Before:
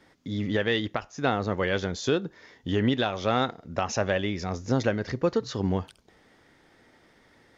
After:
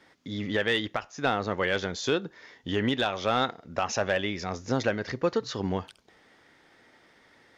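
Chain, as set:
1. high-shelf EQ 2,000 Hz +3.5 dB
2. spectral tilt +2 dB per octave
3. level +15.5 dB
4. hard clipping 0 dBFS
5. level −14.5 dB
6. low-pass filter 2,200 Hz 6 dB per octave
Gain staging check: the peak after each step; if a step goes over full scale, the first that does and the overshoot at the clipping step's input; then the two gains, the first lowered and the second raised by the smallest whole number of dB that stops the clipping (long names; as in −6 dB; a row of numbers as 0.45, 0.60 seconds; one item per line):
−11.0, −8.5, +7.0, 0.0, −14.5, −14.5 dBFS
step 3, 7.0 dB
step 3 +8.5 dB, step 5 −7.5 dB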